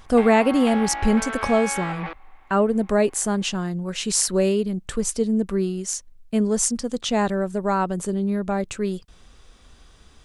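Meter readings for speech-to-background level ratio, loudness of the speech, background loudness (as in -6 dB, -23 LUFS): 8.0 dB, -22.5 LUFS, -30.5 LUFS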